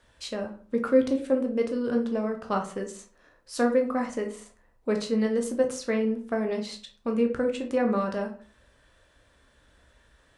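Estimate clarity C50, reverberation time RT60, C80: 10.0 dB, 0.45 s, 15.5 dB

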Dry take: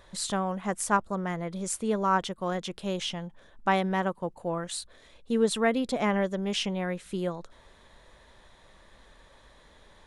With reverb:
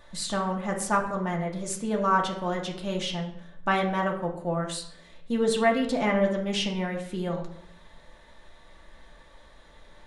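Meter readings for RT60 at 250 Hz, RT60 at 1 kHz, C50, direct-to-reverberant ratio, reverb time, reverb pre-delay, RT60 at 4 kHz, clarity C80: 0.90 s, 0.65 s, 8.0 dB, -1.0 dB, 0.70 s, 3 ms, 0.50 s, 11.0 dB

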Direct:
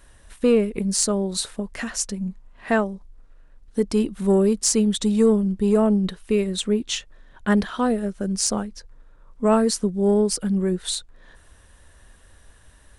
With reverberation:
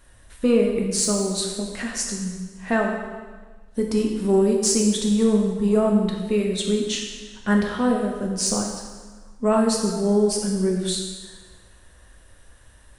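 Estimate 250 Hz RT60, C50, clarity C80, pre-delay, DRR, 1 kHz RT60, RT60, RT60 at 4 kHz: 1.4 s, 3.5 dB, 5.0 dB, 4 ms, 0.0 dB, 1.4 s, 1.4 s, 1.3 s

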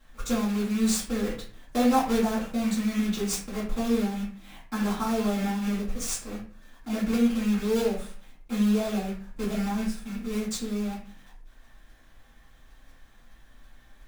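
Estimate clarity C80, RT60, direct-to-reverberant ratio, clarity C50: 10.5 dB, 0.40 s, -10.0 dB, 6.0 dB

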